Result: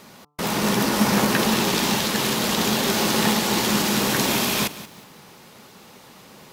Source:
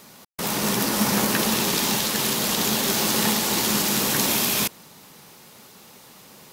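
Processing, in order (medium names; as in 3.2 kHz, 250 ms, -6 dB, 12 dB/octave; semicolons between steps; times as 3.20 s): treble shelf 5.7 kHz -9.5 dB; de-hum 147.1 Hz, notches 9; bit-crushed delay 181 ms, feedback 35%, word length 7-bit, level -15 dB; trim +3.5 dB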